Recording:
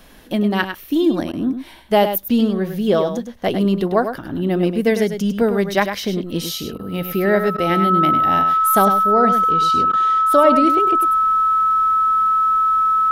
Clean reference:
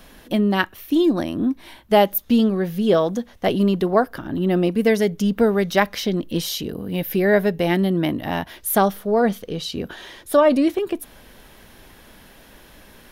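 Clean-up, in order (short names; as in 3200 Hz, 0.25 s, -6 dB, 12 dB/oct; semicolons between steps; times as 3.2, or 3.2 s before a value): notch 1300 Hz, Q 30; interpolate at 1.32/6.78/7.57/9.92, 11 ms; inverse comb 0.101 s -8.5 dB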